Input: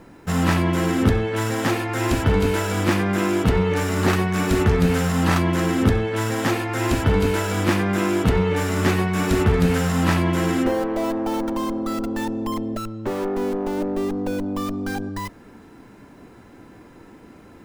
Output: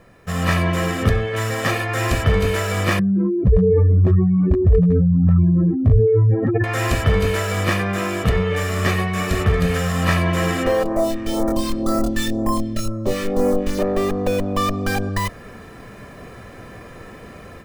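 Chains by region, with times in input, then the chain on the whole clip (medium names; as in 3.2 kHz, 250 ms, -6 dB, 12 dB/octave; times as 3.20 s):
2.99–6.64 s: spectral contrast enhancement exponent 3.6 + hard clipper -13.5 dBFS + level flattener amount 70%
10.83–13.79 s: phase shifter stages 2, 2 Hz, lowest notch 690–3100 Hz + doubling 24 ms -2 dB
whole clip: peaking EQ 2.1 kHz +3.5 dB 0.93 oct; comb 1.7 ms, depth 61%; level rider; trim -4 dB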